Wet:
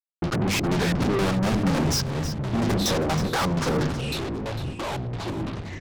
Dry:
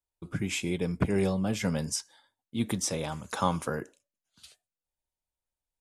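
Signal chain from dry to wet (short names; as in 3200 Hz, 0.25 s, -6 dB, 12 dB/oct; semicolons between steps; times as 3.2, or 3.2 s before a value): band shelf 4800 Hz -14 dB 2.5 oct; notches 50/100/150/200/250/300/350 Hz; in parallel at -2 dB: compressor, threshold -38 dBFS, peak gain reduction 16 dB; on the sum: fuzz box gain 46 dB, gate -50 dBFS; LFO low-pass square 4.2 Hz 360–5300 Hz; soft clip -19 dBFS, distortion -9 dB; echo 0.319 s -11.5 dB; echoes that change speed 81 ms, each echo -6 st, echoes 3, each echo -6 dB; gain -3.5 dB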